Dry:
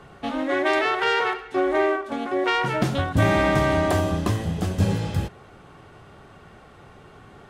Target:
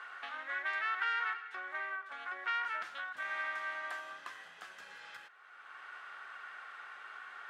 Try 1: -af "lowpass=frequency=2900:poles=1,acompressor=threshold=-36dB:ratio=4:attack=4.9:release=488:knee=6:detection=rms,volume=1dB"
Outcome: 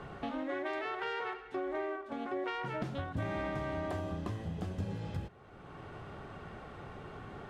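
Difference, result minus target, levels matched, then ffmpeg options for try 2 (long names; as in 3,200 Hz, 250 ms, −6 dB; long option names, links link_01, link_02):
2,000 Hz band −7.0 dB
-af "lowpass=frequency=2900:poles=1,acompressor=threshold=-36dB:ratio=4:attack=4.9:release=488:knee=6:detection=rms,highpass=frequency=1500:width_type=q:width=2.7,volume=1dB"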